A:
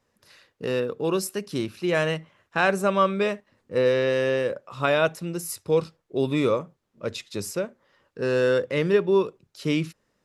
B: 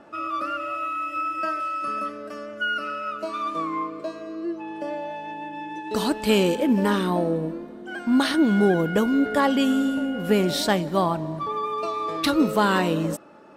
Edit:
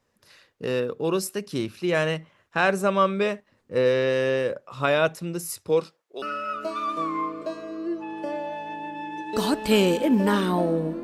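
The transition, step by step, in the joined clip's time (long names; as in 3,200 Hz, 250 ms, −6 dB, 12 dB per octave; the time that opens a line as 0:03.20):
A
0:05.68–0:06.22: high-pass filter 160 Hz → 800 Hz
0:06.22: continue with B from 0:02.80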